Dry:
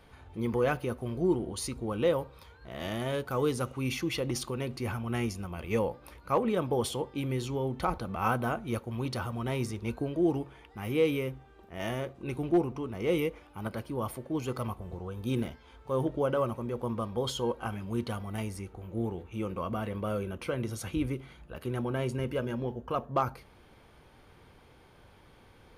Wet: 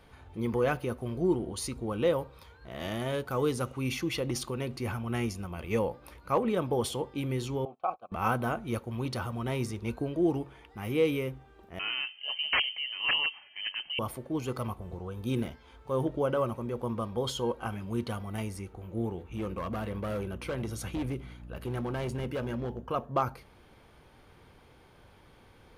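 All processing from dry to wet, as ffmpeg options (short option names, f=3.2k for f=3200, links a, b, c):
-filter_complex "[0:a]asettb=1/sr,asplit=3[a][b][c];[a]atrim=end=7.654[d];[b]atrim=start=7.65:end=8.12,asetpts=PTS-STARTPTS,afade=t=in:d=0.004:c=qsin,afade=t=out:st=0.466:d=0.004:c=qsin,agate=range=-22dB:threshold=-36dB:ratio=16:release=100:detection=peak,acontrast=58,asplit=3[e][f][g];[e]bandpass=f=730:t=q:w=8,volume=0dB[h];[f]bandpass=f=1.09k:t=q:w=8,volume=-6dB[i];[g]bandpass=f=2.44k:t=q:w=8,volume=-9dB[j];[h][i][j]amix=inputs=3:normalize=0[k];[c]atrim=start=8.116[l];[d][k]acrossfade=d=0.004:c1=hsin:c2=qsin[m];[m][l]acrossfade=d=0.004:c1=qsin:c2=hsin,asettb=1/sr,asplit=3[n][o][p];[n]atrim=end=11.794[q];[o]atrim=start=11.79:end=13.99,asetpts=PTS-STARTPTS,afade=t=in:d=0.004:c=qsin,afade=t=out:st=2.196:d=0.004:c=qsin,aeval=exprs='(mod(10.6*val(0)+1,2)-1)/10.6':c=same,lowpass=f=2.7k:t=q:w=0.5098,lowpass=f=2.7k:t=q:w=0.6013,lowpass=f=2.7k:t=q:w=0.9,lowpass=f=2.7k:t=q:w=2.563,afreqshift=-3200[r];[p]atrim=start=13.986[s];[q][r]acrossfade=d=0.004:c1=hsin:c2=qsin[t];[t][s]acrossfade=d=0.004:c1=qsin:c2=hsin,asettb=1/sr,asplit=3[u][v][w];[u]atrim=end=19.304[x];[v]atrim=start=19.3:end=22.84,asetpts=PTS-STARTPTS,afade=t=in:d=0.004:c=qsin,afade=t=out:st=3.536:d=0.004:c=qsin,aeval=exprs='val(0)+0.00562*(sin(2*PI*60*n/s)+sin(2*PI*2*60*n/s)/2+sin(2*PI*3*60*n/s)/3+sin(2*PI*4*60*n/s)/4+sin(2*PI*5*60*n/s)/5)':c=same,volume=29dB,asoftclip=hard,volume=-29dB[y];[w]atrim=start=22.836[z];[x][y]acrossfade=d=0.004:c1=hsin:c2=qsin[aa];[aa][z]acrossfade=d=0.004:c1=qsin:c2=hsin"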